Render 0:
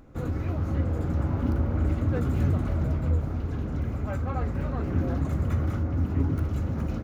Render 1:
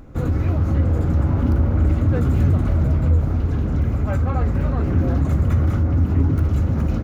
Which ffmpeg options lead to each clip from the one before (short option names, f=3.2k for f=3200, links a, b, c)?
-filter_complex "[0:a]lowshelf=f=150:g=5,asplit=2[a][b];[b]alimiter=limit=-19.5dB:level=0:latency=1,volume=1.5dB[c];[a][c]amix=inputs=2:normalize=0"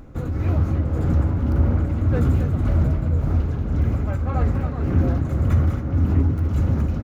-filter_complex "[0:a]tremolo=f=1.8:d=0.5,asplit=2[a][b];[b]adelay=268.2,volume=-9dB,highshelf=f=4k:g=-6.04[c];[a][c]amix=inputs=2:normalize=0"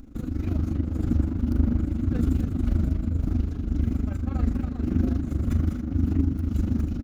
-af "equalizer=f=125:t=o:w=1:g=-12,equalizer=f=250:t=o:w=1:g=8,equalizer=f=500:t=o:w=1:g=-11,equalizer=f=1k:t=o:w=1:g=-9,equalizer=f=2k:t=o:w=1:g=-6,tremolo=f=25:d=0.71,volume=2dB"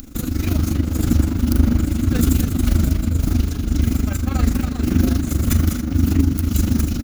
-af "crystalizer=i=8:c=0,volume=6.5dB"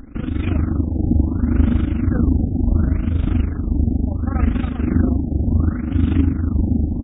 -af "afftfilt=real='re*lt(b*sr/1024,830*pow(3800/830,0.5+0.5*sin(2*PI*0.7*pts/sr)))':imag='im*lt(b*sr/1024,830*pow(3800/830,0.5+0.5*sin(2*PI*0.7*pts/sr)))':win_size=1024:overlap=0.75"